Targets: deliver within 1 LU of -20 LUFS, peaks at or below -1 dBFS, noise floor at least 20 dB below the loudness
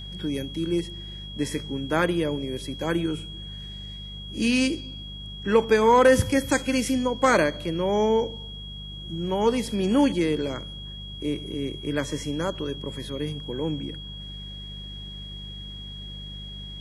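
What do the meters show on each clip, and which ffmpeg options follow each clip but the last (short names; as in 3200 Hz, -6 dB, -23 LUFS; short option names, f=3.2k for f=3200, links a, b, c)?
hum 50 Hz; harmonics up to 200 Hz; hum level -38 dBFS; steady tone 3300 Hz; tone level -39 dBFS; loudness -25.0 LUFS; peak -7.0 dBFS; loudness target -20.0 LUFS
-> -af "bandreject=f=50:t=h:w=4,bandreject=f=100:t=h:w=4,bandreject=f=150:t=h:w=4,bandreject=f=200:t=h:w=4"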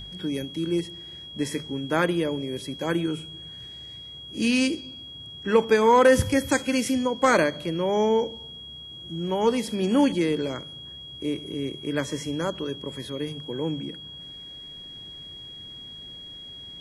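hum none; steady tone 3300 Hz; tone level -39 dBFS
-> -af "bandreject=f=3.3k:w=30"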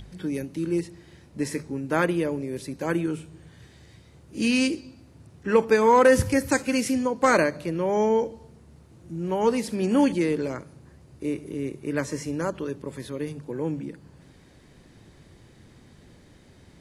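steady tone none; loudness -25.0 LUFS; peak -7.0 dBFS; loudness target -20.0 LUFS
-> -af "volume=5dB"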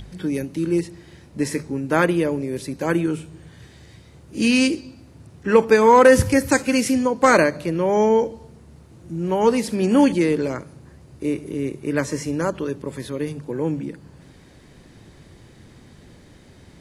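loudness -20.0 LUFS; peak -2.0 dBFS; noise floor -49 dBFS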